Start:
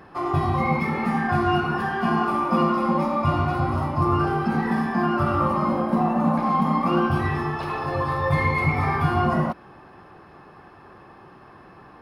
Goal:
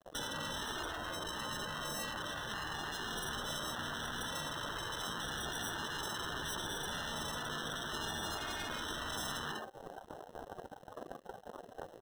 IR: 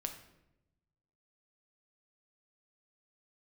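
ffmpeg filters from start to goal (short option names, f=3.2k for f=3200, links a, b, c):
-filter_complex "[0:a]asoftclip=type=tanh:threshold=-25.5dB,asettb=1/sr,asplit=3[a][b][c];[a]atrim=end=0.904[d];[b]atrim=start=0.9:end=3.06,asetpts=PTS-STARTPTS,afade=t=in:d=0.004:c=qsin,afade=t=out:st=2.156:d=0.004:c=qsin,equalizer=f=1.6k:t=o:w=1.3:g=-11.5[e];[c]atrim=start=3.056[f];[d][e]acrossfade=d=0.004:c1=hsin:c2=qsin[g];[g][f]acrossfade=d=0.004:c1=qsin:c2=hsin,aecho=1:1:46|59:0.668|0.355[h];[1:a]atrim=start_sample=2205,atrim=end_sample=3528,asetrate=26901,aresample=44100[i];[h][i]afir=irnorm=-1:irlink=0,aeval=exprs='sgn(val(0))*max(abs(val(0))-0.0112,0)':c=same,highpass=420,equalizer=f=480:t=q:w=4:g=6,equalizer=f=700:t=q:w=4:g=4,equalizer=f=1k:t=q:w=4:g=-4,equalizer=f=1.5k:t=q:w=4:g=4,equalizer=f=2.9k:t=q:w=4:g=8,lowpass=f=3.2k:w=0.5412,lowpass=f=3.2k:w=1.3066,acrusher=samples=19:mix=1:aa=0.000001,afftfilt=real='re*lt(hypot(re,im),0.316)':imag='im*lt(hypot(re,im),0.316)':win_size=1024:overlap=0.75,acompressor=threshold=-41dB:ratio=20,afftdn=nr=14:nf=-52,afftfilt=real='re*lt(hypot(re,im),0.0126)':imag='im*lt(hypot(re,im),0.0126)':win_size=1024:overlap=0.75,volume=12.5dB"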